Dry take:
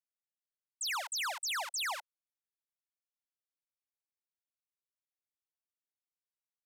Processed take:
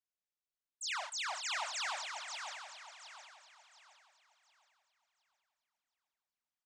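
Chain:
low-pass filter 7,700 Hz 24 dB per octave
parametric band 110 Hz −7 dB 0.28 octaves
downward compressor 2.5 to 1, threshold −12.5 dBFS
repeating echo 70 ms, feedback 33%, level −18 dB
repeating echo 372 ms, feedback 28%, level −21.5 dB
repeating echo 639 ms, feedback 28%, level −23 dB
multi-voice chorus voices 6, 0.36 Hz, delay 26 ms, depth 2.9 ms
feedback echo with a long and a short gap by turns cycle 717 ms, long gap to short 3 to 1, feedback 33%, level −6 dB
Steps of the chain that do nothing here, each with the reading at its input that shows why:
parametric band 110 Hz: nothing at its input below 480 Hz
downward compressor, threshold −12.5 dBFS: peak of its input −28.0 dBFS

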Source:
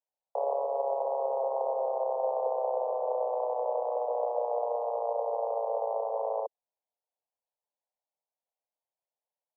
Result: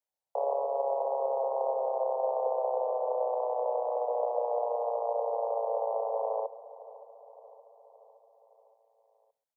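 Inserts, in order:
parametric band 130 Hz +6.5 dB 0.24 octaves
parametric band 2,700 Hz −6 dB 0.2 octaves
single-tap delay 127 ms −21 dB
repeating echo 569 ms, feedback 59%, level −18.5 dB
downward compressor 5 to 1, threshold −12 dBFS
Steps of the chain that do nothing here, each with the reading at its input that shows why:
parametric band 130 Hz: nothing at its input below 360 Hz
parametric band 2,700 Hz: nothing at its input above 1,200 Hz
downward compressor, threshold −12 dBFS: peak of its input −18.0 dBFS

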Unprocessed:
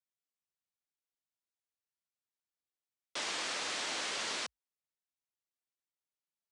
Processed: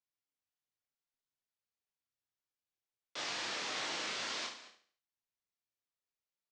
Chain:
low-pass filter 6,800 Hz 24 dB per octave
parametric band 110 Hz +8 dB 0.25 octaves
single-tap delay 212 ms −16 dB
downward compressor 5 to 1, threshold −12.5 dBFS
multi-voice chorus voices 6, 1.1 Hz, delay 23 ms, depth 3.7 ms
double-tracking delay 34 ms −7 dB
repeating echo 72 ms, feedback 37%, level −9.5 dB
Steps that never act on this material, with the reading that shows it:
downward compressor, threshold −12.5 dBFS: peak of its input −24.5 dBFS

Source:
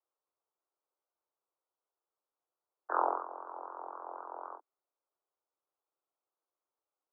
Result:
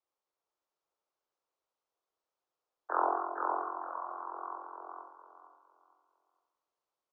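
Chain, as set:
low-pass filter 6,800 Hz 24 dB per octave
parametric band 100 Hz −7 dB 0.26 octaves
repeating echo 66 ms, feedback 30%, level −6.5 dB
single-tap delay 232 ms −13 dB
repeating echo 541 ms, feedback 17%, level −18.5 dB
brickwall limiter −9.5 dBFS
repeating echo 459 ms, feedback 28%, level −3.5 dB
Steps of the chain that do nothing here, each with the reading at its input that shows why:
low-pass filter 6,800 Hz: nothing at its input above 1,800 Hz
parametric band 100 Hz: nothing at its input below 250 Hz
brickwall limiter −9.5 dBFS: peak of its input −14.0 dBFS

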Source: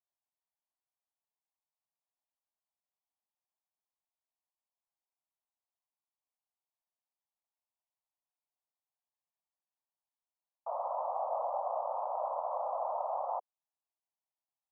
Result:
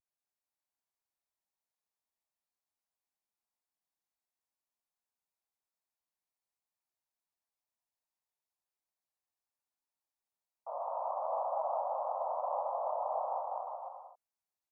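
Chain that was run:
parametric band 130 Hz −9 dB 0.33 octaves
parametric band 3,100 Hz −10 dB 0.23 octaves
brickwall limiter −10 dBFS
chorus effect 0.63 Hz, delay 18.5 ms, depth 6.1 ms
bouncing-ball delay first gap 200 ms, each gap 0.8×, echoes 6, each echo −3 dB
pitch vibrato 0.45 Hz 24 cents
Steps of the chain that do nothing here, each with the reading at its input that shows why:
parametric band 130 Hz: nothing at its input below 450 Hz
parametric band 3,100 Hz: nothing at its input above 1,400 Hz
brickwall limiter −10 dBFS: peak of its input −23.0 dBFS

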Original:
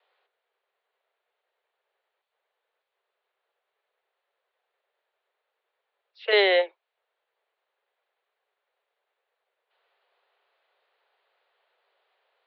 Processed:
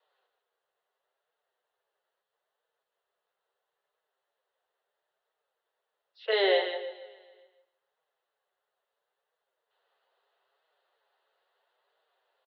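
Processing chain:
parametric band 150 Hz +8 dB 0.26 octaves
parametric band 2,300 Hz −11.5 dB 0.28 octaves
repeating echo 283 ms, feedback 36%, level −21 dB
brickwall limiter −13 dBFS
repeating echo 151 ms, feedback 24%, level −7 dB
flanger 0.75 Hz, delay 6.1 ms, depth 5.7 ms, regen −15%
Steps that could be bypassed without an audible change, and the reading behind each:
parametric band 150 Hz: nothing at its input below 340 Hz

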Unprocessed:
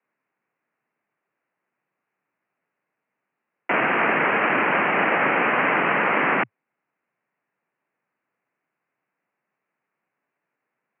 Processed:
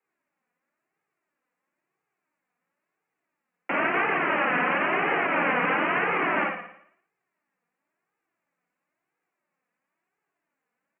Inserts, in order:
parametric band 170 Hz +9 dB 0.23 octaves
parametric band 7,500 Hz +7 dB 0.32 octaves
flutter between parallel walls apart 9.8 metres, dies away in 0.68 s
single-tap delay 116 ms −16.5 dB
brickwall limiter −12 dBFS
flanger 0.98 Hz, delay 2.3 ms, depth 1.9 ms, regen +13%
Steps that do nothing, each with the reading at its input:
parametric band 7,500 Hz: nothing at its input above 3,200 Hz

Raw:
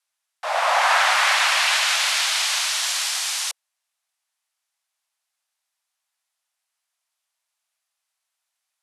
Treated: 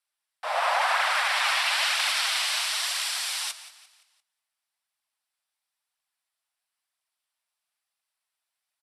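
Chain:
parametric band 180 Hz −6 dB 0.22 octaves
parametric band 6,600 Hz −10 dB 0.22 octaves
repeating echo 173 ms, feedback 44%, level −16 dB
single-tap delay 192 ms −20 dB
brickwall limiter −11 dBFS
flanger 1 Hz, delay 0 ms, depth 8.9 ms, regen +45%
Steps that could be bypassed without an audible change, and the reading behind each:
parametric band 180 Hz: nothing at its input below 480 Hz

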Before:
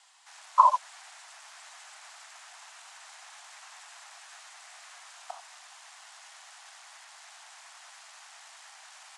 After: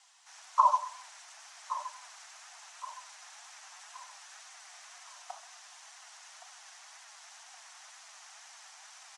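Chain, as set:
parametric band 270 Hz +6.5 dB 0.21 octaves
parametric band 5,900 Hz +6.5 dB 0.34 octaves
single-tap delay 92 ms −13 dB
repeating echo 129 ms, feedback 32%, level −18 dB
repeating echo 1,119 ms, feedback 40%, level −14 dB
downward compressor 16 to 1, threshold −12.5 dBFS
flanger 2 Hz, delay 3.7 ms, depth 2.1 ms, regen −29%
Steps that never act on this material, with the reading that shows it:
parametric band 270 Hz: nothing at its input below 540 Hz

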